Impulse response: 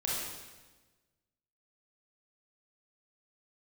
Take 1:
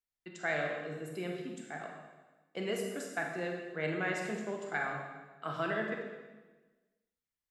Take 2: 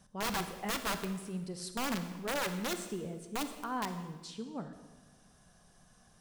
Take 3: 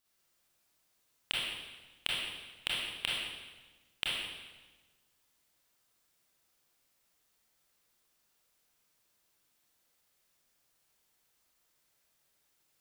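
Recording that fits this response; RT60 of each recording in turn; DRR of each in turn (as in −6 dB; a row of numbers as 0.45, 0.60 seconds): 3; 1.3, 1.2, 1.3 seconds; 1.0, 8.0, −6.0 decibels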